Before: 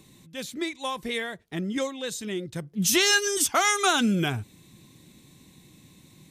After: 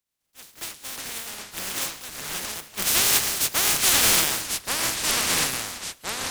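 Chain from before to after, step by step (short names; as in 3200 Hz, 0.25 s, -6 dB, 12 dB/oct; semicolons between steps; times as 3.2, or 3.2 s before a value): spectral contrast lowered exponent 0.12; echoes that change speed 0.206 s, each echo -4 st, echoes 3; in parallel at -2 dB: limiter -13 dBFS, peak gain reduction 10.5 dB; on the sum: three-band expander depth 100%; gain -4 dB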